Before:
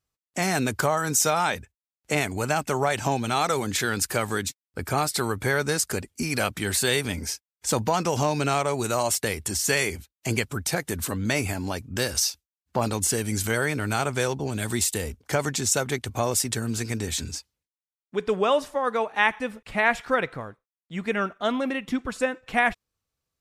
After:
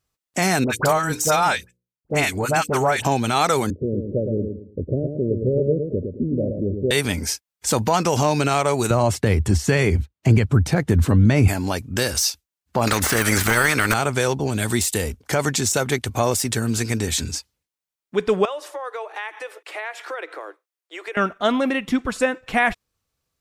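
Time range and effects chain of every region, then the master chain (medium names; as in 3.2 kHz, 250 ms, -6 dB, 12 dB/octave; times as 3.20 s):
0.64–3.05 s: hum notches 60/120/180/240/300/360/420/480/540 Hz + transient shaper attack -2 dB, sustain -9 dB + phase dispersion highs, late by 62 ms, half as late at 1.3 kHz
3.70–6.91 s: steep low-pass 590 Hz 96 dB/octave + feedback delay 111 ms, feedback 30%, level -6 dB
8.90–11.48 s: high-pass 68 Hz 24 dB/octave + RIAA curve playback
12.87–13.94 s: high-order bell 1.6 kHz +13.5 dB 1.1 oct + transient shaper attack +8 dB, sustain -6 dB + spectrum-flattening compressor 2:1
18.45–21.17 s: Chebyshev high-pass 310 Hz, order 8 + compression 4:1, threshold -35 dBFS
whole clip: de-esser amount 40%; loudness maximiser +12 dB; trim -6 dB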